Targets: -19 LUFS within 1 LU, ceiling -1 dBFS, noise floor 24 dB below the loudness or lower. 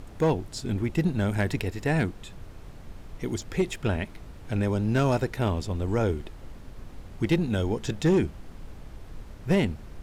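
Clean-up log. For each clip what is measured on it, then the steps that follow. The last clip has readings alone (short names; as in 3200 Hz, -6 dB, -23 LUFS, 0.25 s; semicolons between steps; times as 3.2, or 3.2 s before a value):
clipped 0.5%; flat tops at -16.0 dBFS; noise floor -45 dBFS; noise floor target -52 dBFS; loudness -27.5 LUFS; peak -16.0 dBFS; loudness target -19.0 LUFS
-> clip repair -16 dBFS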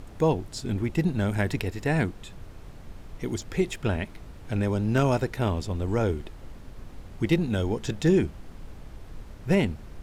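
clipped 0.0%; noise floor -45 dBFS; noise floor target -51 dBFS
-> noise print and reduce 6 dB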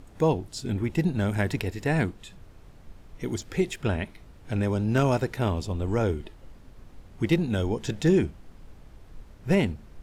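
noise floor -50 dBFS; noise floor target -51 dBFS
-> noise print and reduce 6 dB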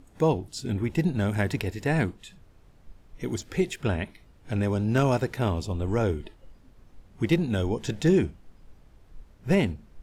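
noise floor -56 dBFS; loudness -27.0 LUFS; peak -10.5 dBFS; loudness target -19.0 LUFS
-> gain +8 dB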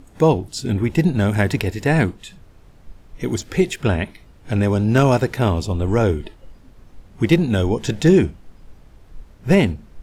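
loudness -19.0 LUFS; peak -2.5 dBFS; noise floor -48 dBFS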